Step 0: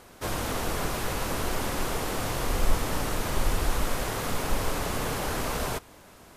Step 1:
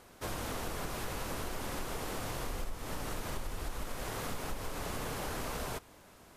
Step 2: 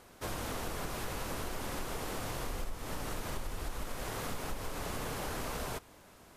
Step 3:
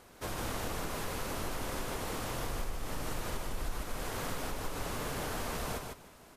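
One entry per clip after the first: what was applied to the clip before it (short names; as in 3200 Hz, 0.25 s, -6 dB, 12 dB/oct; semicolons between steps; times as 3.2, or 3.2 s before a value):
compressor 12:1, threshold -27 dBFS, peak gain reduction 12.5 dB; gain -6 dB
nothing audible
feedback echo 0.15 s, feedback 17%, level -4.5 dB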